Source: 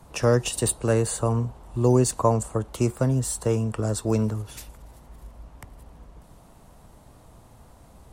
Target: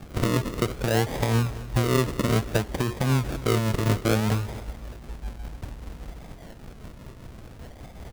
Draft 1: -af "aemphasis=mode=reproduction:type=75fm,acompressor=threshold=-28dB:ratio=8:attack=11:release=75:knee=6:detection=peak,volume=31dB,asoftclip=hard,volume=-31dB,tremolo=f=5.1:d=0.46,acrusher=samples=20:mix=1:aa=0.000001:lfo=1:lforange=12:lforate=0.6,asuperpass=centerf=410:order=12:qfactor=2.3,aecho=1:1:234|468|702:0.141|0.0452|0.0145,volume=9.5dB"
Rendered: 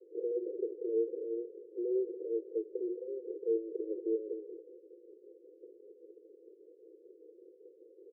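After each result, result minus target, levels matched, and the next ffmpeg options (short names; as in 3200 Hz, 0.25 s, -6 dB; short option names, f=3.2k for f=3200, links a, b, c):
overloaded stage: distortion +14 dB; 500 Hz band +6.5 dB; decimation with a swept rate: distortion -6 dB
-af "aemphasis=mode=reproduction:type=75fm,acompressor=threshold=-28dB:ratio=8:attack=11:release=75:knee=6:detection=peak,volume=22dB,asoftclip=hard,volume=-22dB,tremolo=f=5.1:d=0.46,acrusher=samples=20:mix=1:aa=0.000001:lfo=1:lforange=12:lforate=0.6,asuperpass=centerf=410:order=12:qfactor=2.3,aecho=1:1:234|468|702:0.141|0.0452|0.0145,volume=9.5dB"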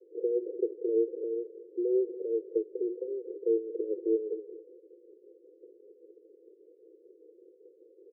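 500 Hz band +6.5 dB; decimation with a swept rate: distortion -7 dB
-af "aemphasis=mode=reproduction:type=75fm,acompressor=threshold=-28dB:ratio=8:attack=11:release=75:knee=6:detection=peak,volume=22dB,asoftclip=hard,volume=-22dB,tremolo=f=5.1:d=0.46,acrusher=samples=20:mix=1:aa=0.000001:lfo=1:lforange=12:lforate=0.6,aecho=1:1:234|468|702:0.141|0.0452|0.0145,volume=9.5dB"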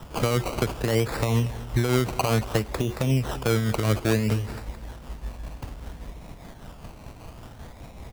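decimation with a swept rate: distortion -7 dB
-af "aemphasis=mode=reproduction:type=75fm,acompressor=threshold=-28dB:ratio=8:attack=11:release=75:knee=6:detection=peak,volume=22dB,asoftclip=hard,volume=-22dB,tremolo=f=5.1:d=0.46,acrusher=samples=44:mix=1:aa=0.000001:lfo=1:lforange=26.4:lforate=0.6,aecho=1:1:234|468|702:0.141|0.0452|0.0145,volume=9.5dB"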